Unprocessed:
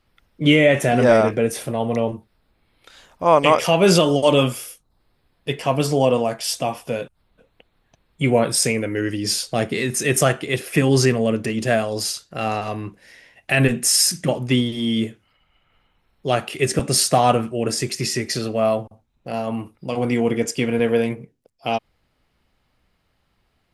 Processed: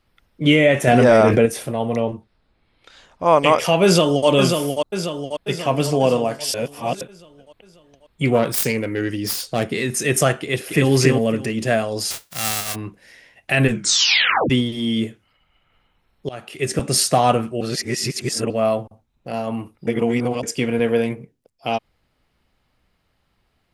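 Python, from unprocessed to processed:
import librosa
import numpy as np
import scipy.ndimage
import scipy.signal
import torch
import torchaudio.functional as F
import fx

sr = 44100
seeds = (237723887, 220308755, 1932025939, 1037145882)

y = fx.env_flatten(x, sr, amount_pct=70, at=(0.87, 1.46))
y = fx.lowpass(y, sr, hz=7100.0, slope=12, at=(2.02, 3.24))
y = fx.echo_throw(y, sr, start_s=3.84, length_s=0.44, ms=540, feedback_pct=55, wet_db=-5.0)
y = fx.echo_throw(y, sr, start_s=5.51, length_s=0.5, ms=250, feedback_pct=35, wet_db=-15.0)
y = fx.self_delay(y, sr, depth_ms=0.11, at=(8.25, 9.66))
y = fx.echo_throw(y, sr, start_s=10.4, length_s=0.5, ms=280, feedback_pct=20, wet_db=-3.0)
y = fx.envelope_flatten(y, sr, power=0.1, at=(12.1, 12.74), fade=0.02)
y = fx.edit(y, sr, fx.reverse_span(start_s=6.54, length_s=0.47),
    fx.tape_stop(start_s=13.69, length_s=0.81),
    fx.fade_in_from(start_s=16.29, length_s=0.73, curve='qsin', floor_db=-22.0),
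    fx.reverse_span(start_s=17.61, length_s=0.89),
    fx.reverse_span(start_s=19.87, length_s=0.56), tone=tone)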